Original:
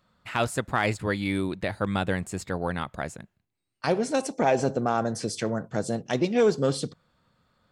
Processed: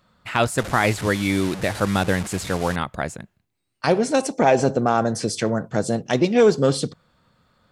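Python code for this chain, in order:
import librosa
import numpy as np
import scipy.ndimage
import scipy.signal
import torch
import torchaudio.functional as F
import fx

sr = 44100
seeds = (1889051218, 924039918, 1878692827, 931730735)

y = fx.delta_mod(x, sr, bps=64000, step_db=-32.0, at=(0.58, 2.76))
y = y * 10.0 ** (6.0 / 20.0)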